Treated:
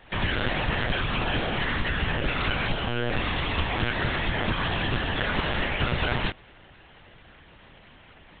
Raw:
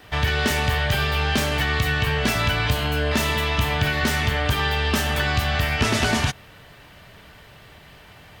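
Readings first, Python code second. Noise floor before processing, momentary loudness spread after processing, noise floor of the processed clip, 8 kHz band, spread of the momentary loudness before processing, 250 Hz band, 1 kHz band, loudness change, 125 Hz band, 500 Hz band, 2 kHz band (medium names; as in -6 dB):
-47 dBFS, 1 LU, -52 dBFS, under -40 dB, 1 LU, -4.0 dB, -4.5 dB, -5.5 dB, -6.5 dB, -4.5 dB, -4.5 dB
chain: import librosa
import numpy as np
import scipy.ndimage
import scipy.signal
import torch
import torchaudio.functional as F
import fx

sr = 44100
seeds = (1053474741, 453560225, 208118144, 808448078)

y = fx.lpc_monotone(x, sr, seeds[0], pitch_hz=120.0, order=10)
y = F.gain(torch.from_numpy(y), -4.5).numpy()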